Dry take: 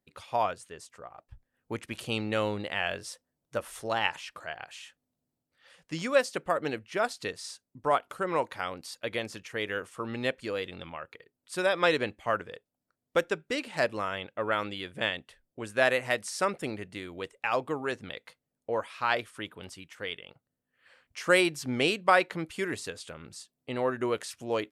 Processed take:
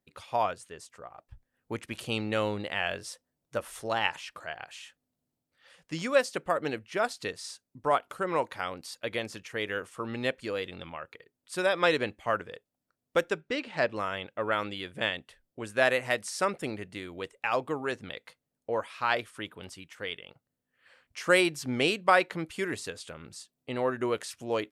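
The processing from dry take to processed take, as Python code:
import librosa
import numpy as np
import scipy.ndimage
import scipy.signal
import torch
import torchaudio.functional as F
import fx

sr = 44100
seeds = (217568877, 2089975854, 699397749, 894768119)

y = fx.lowpass(x, sr, hz=4500.0, slope=12, at=(13.4, 13.95), fade=0.02)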